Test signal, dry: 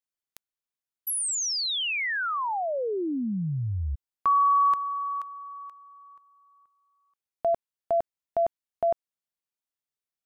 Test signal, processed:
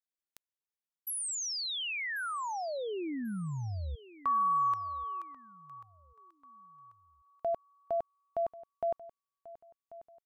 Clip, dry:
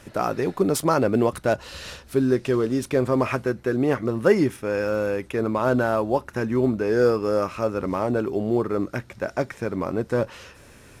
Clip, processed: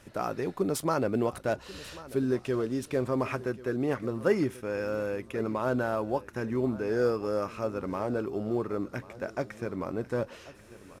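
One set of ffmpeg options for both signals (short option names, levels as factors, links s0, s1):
-af "aecho=1:1:1089|2178|3267:0.126|0.0428|0.0146,volume=0.422"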